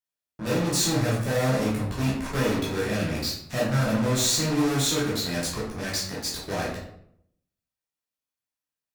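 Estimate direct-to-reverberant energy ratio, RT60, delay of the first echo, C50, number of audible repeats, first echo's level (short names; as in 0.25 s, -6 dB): -7.0 dB, 0.70 s, none, 2.5 dB, none, none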